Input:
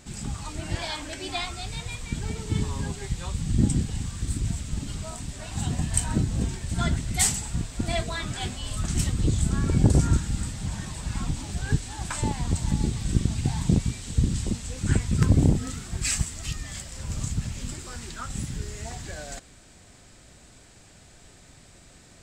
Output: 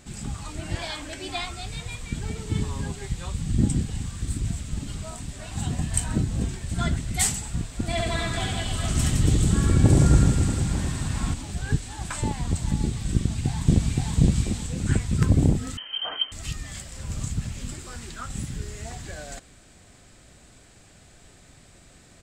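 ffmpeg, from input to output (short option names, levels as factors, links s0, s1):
-filter_complex "[0:a]asettb=1/sr,asplit=3[s0][s1][s2];[s0]atrim=end=7.904[s3];[s1]atrim=start=7.9:end=11.34,asetpts=PTS-STARTPTS,afade=t=in:d=0.004:c=qsin,afade=t=out:st=3.436:d=0.004:c=qsin,aecho=1:1:70|161|279.3|433.1|633|892.9:0.794|0.631|0.501|0.398|0.316|0.251,atrim=end_sample=151704[s4];[s2]atrim=start=11.336[s5];[s3][s4]acrossfade=d=0.004:c1=hsin:c2=qsin[s6];[s6][s5]acrossfade=d=0.004:c1=qsin:c2=hsin,asplit=2[s7][s8];[s8]afade=t=in:st=13.15:d=0.01,afade=t=out:st=14.14:d=0.01,aecho=0:1:520|1040|1560|2080:1|0.3|0.09|0.027[s9];[s7][s9]amix=inputs=2:normalize=0,asettb=1/sr,asplit=3[s10][s11][s12];[s10]atrim=end=15.774[s13];[s11]atrim=start=15.77:end=16.32,asetpts=PTS-STARTPTS,afade=t=in:d=0.004:c=qsin,afade=t=out:st=0.546:d=0.004:c=qsin,lowpass=f=2700:t=q:w=0.5098,lowpass=f=2700:t=q:w=0.6013,lowpass=f=2700:t=q:w=0.9,lowpass=f=2700:t=q:w=2.563,afreqshift=-3200[s14];[s12]atrim=start=16.316[s15];[s13][s14]acrossfade=d=0.004:c1=hsin:c2=qsin[s16];[s16][s15]acrossfade=d=0.004:c1=qsin:c2=hsin,equalizer=f=5500:t=o:w=0.77:g=-2.5,bandreject=f=920:w=24"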